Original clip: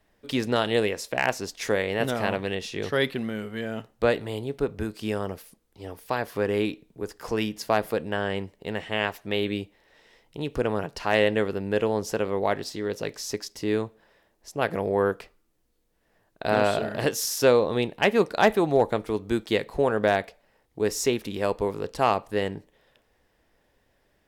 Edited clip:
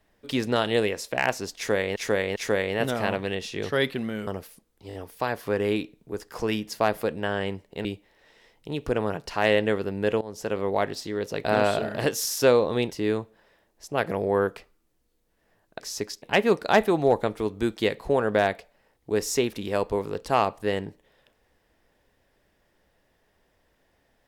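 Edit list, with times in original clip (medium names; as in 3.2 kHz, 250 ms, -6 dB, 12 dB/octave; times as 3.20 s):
1.56–1.96 s: loop, 3 plays
3.47–5.22 s: delete
5.83 s: stutter 0.02 s, 4 plays
8.74–9.54 s: delete
11.90–12.28 s: fade in, from -18.5 dB
13.13–13.55 s: swap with 16.44–17.91 s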